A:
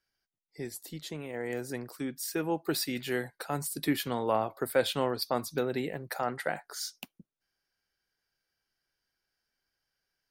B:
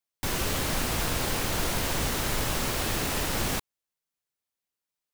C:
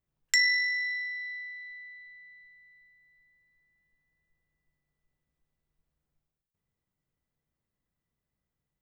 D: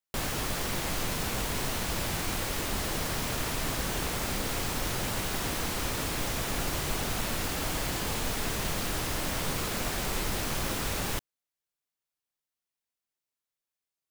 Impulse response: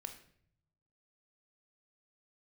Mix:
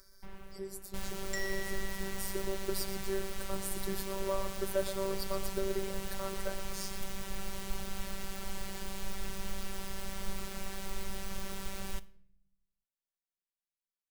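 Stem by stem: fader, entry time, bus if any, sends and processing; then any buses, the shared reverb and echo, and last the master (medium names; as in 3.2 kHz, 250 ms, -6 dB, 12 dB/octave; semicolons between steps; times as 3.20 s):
-1.5 dB, 0.00 s, no send, echo send -11 dB, high-order bell 1.9 kHz -8.5 dB 1.2 oct; upward compressor, threshold -36 dBFS; static phaser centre 790 Hz, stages 6
-14.0 dB, 0.00 s, no send, no echo send, low-pass 2.2 kHz 12 dB/octave; auto duck -13 dB, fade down 0.80 s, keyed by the first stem
-12.5 dB, 1.00 s, no send, no echo send, none
-12.0 dB, 0.80 s, send -4 dB, no echo send, none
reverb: on, RT60 0.60 s, pre-delay 21 ms
echo: delay 119 ms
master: bass shelf 96 Hz +11.5 dB; robot voice 193 Hz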